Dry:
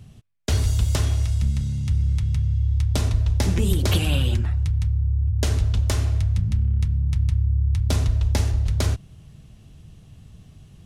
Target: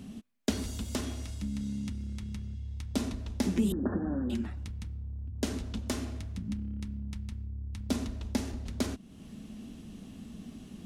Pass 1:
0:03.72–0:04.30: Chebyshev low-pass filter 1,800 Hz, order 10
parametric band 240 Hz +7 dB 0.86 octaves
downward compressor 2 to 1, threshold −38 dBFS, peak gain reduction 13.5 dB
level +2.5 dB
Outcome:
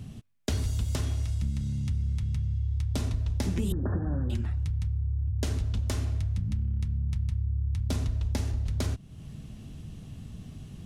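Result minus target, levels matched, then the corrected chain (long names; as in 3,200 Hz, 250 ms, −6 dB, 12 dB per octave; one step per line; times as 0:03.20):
125 Hz band +5.0 dB
0:03.72–0:04.30: Chebyshev low-pass filter 1,800 Hz, order 10
parametric band 240 Hz +7 dB 0.86 octaves
downward compressor 2 to 1, threshold −38 dBFS, peak gain reduction 13.5 dB
low shelf with overshoot 170 Hz −8 dB, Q 3
level +2.5 dB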